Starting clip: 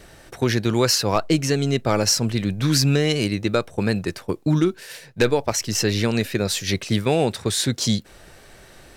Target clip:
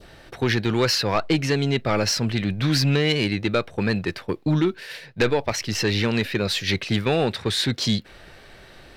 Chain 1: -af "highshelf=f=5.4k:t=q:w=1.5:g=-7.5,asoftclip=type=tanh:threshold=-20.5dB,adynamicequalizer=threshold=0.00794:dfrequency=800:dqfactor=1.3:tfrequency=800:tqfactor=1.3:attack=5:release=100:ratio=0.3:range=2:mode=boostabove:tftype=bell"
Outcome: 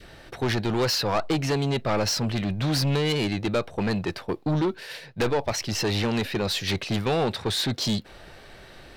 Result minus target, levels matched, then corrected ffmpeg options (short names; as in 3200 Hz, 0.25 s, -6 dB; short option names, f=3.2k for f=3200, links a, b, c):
soft clip: distortion +8 dB; 2000 Hz band -2.5 dB
-af "highshelf=f=5.4k:t=q:w=1.5:g=-7.5,asoftclip=type=tanh:threshold=-12.5dB,adynamicequalizer=threshold=0.00794:dfrequency=2000:dqfactor=1.3:tfrequency=2000:tqfactor=1.3:attack=5:release=100:ratio=0.3:range=2:mode=boostabove:tftype=bell"